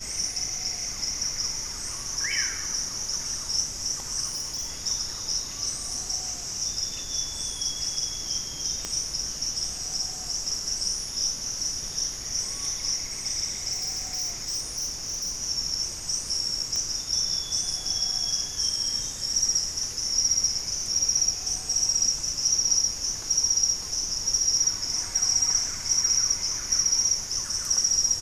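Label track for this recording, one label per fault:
4.260000	4.710000	clipped -27 dBFS
8.850000	8.850000	pop -16 dBFS
13.720000	15.400000	clipped -26 dBFS
16.760000	16.760000	pop -16 dBFS

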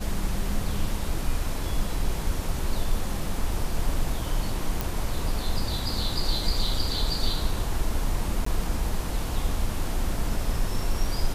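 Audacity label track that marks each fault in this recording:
4.810000	4.810000	pop
8.450000	8.460000	dropout 14 ms

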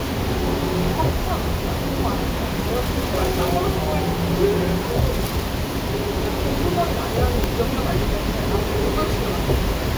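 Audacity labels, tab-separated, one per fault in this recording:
7.440000	7.440000	pop

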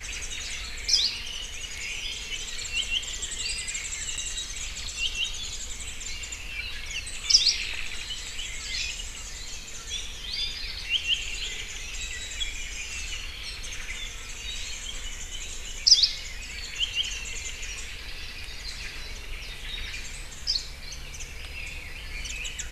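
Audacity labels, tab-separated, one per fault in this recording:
4.170000	4.180000	dropout 7.1 ms

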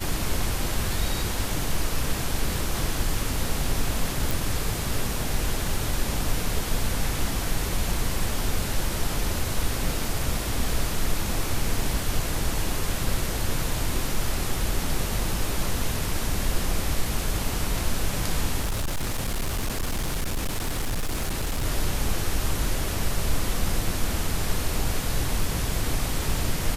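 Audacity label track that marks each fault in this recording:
4.310000	4.310000	pop
18.610000	21.650000	clipped -22.5 dBFS

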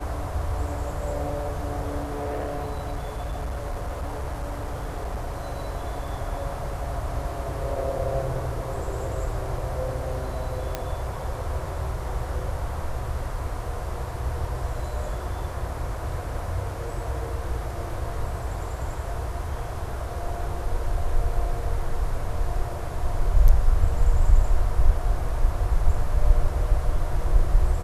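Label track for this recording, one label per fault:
2.030000	5.340000	clipped -25.5 dBFS
10.750000	10.750000	pop -12 dBFS

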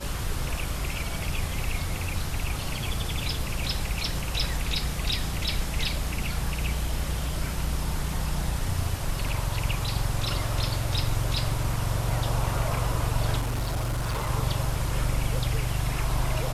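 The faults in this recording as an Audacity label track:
13.400000	14.300000	clipped -24 dBFS

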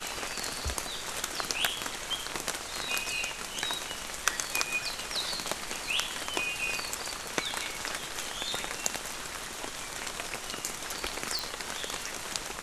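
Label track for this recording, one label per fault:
11.390000	11.390000	pop

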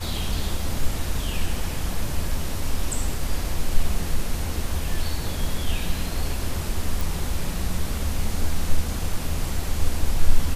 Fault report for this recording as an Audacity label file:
7.010000	7.010000	pop

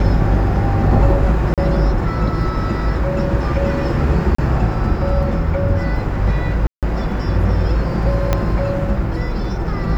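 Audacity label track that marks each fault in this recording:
1.540000	1.580000	dropout 37 ms
4.350000	4.380000	dropout 34 ms
6.670000	6.830000	dropout 157 ms
8.330000	8.330000	pop -3 dBFS

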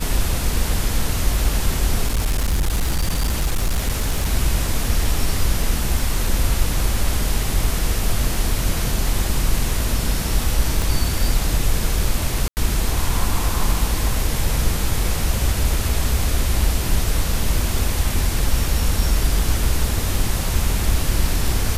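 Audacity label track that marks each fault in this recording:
2.060000	4.290000	clipped -15 dBFS
6.270000	6.270000	dropout 2 ms
10.820000	10.820000	pop
12.480000	12.570000	dropout 89 ms

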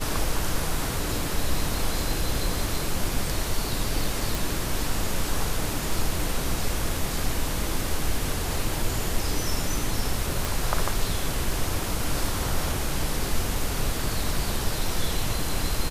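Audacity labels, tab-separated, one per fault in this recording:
4.350000	4.350000	pop
10.450000	10.450000	pop

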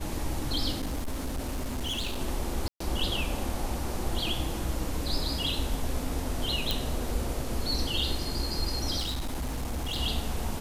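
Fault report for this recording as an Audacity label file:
0.780000	2.190000	clipped -28 dBFS
2.680000	2.800000	dropout 124 ms
6.710000	6.710000	pop
8.980000	9.980000	clipped -28 dBFS

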